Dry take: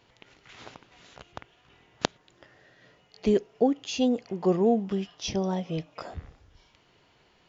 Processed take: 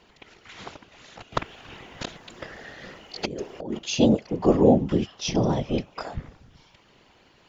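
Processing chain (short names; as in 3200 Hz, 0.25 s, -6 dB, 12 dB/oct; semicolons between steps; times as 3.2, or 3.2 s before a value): whisperiser; 1.32–3.79 negative-ratio compressor -35 dBFS, ratio -1; gain +5 dB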